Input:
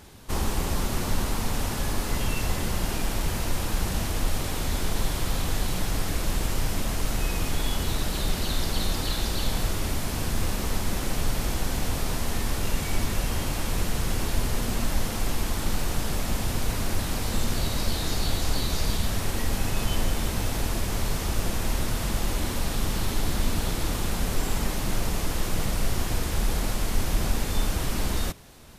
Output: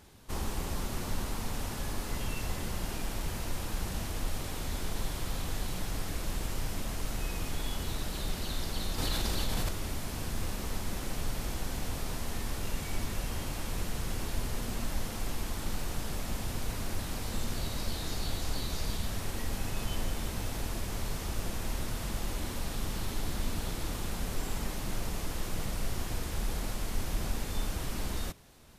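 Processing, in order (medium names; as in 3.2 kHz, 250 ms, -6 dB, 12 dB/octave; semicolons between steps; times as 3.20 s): 8.98–9.69 s: level flattener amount 70%; trim -8 dB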